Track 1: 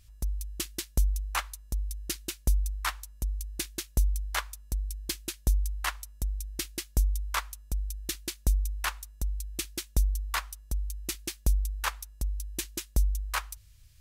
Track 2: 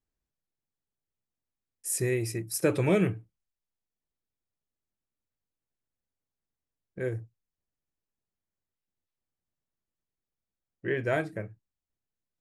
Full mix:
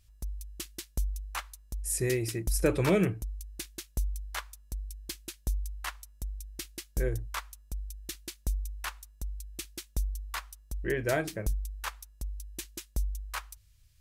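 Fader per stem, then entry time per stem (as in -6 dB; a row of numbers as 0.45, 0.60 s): -6.0, -1.0 dB; 0.00, 0.00 s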